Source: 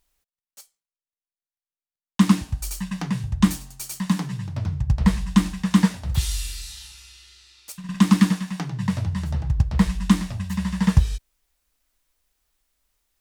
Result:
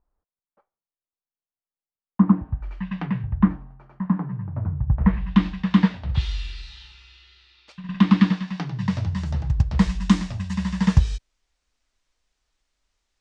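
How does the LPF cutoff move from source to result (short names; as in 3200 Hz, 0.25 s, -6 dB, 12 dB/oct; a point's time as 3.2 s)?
LPF 24 dB/oct
2.43 s 1200 Hz
2.95 s 3200 Hz
3.58 s 1400 Hz
4.9 s 1400 Hz
5.42 s 3800 Hz
8.08 s 3800 Hz
9.28 s 7000 Hz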